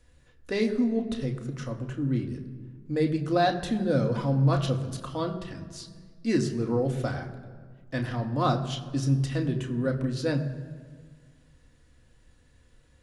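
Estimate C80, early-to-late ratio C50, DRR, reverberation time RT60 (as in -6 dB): 12.0 dB, 11.0 dB, 2.5 dB, 1.7 s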